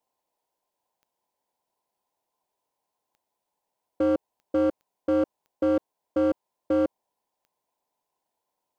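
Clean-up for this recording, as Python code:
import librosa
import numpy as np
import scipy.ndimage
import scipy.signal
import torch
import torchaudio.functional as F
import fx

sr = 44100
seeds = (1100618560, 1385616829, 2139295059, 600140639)

y = fx.fix_declip(x, sr, threshold_db=-18.0)
y = fx.fix_declick_ar(y, sr, threshold=10.0)
y = fx.noise_reduce(y, sr, print_start_s=3.16, print_end_s=3.66, reduce_db=6.0)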